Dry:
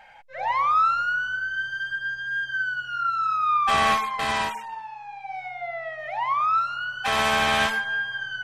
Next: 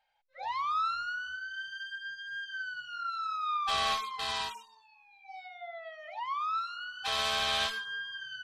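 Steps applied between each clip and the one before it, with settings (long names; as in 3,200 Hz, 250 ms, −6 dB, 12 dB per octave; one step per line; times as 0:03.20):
noise reduction from a noise print of the clip's start 17 dB
octave-band graphic EQ 125/250/2,000/4,000 Hz −5/−9/−6/+11 dB
level −9 dB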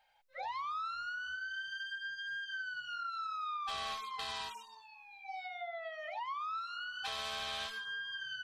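downward compressor 4 to 1, threshold −45 dBFS, peak gain reduction 15.5 dB
level +5 dB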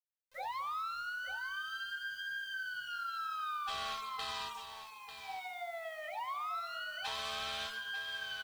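bit-depth reduction 10 bits, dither none
multi-tap delay 219/894 ms −16.5/−10.5 dB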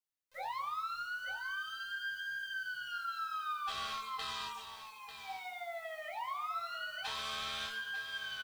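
double-tracking delay 22 ms −6 dB
level −1 dB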